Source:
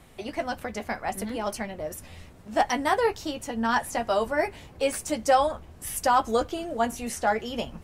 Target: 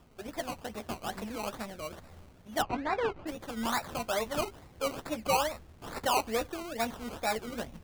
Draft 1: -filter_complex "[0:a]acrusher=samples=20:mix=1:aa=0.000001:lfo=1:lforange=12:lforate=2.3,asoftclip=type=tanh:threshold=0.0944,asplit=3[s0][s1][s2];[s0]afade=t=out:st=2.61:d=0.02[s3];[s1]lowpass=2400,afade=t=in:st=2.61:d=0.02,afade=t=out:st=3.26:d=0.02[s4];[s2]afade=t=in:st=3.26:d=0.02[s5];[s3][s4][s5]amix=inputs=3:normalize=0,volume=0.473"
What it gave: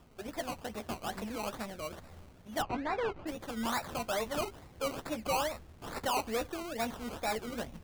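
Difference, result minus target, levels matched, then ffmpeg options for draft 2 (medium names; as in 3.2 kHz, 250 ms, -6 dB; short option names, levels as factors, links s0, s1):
saturation: distortion +13 dB
-filter_complex "[0:a]acrusher=samples=20:mix=1:aa=0.000001:lfo=1:lforange=12:lforate=2.3,asoftclip=type=tanh:threshold=0.299,asplit=3[s0][s1][s2];[s0]afade=t=out:st=2.61:d=0.02[s3];[s1]lowpass=2400,afade=t=in:st=2.61:d=0.02,afade=t=out:st=3.26:d=0.02[s4];[s2]afade=t=in:st=3.26:d=0.02[s5];[s3][s4][s5]amix=inputs=3:normalize=0,volume=0.473"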